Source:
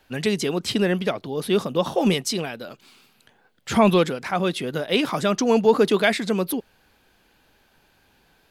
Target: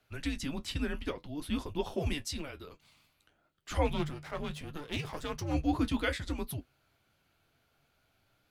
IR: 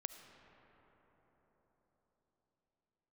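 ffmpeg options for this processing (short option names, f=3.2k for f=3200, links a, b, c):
-filter_complex "[0:a]asettb=1/sr,asplit=3[a][b][c];[a]atrim=end=3.854[d];[b]atrim=start=3.85:end=5.54,asetpts=PTS-STARTPTS,afade=t=in:d=0.004:c=qsin,afade=t=out:st=1.686:d=0.004:c=qsin,aeval=exprs='if(lt(val(0),0),0.251*val(0),val(0))':c=same[e];[c]atrim=start=5.536[f];[d][e]acrossfade=d=0.004:c1=hsin:c2=qsin[g];[g][f]acrossfade=d=0.004:c1=qsin:c2=hsin,afreqshift=-150,flanger=delay=9.8:depth=2.1:regen=-50:speed=0.59:shape=sinusoidal,volume=-8dB"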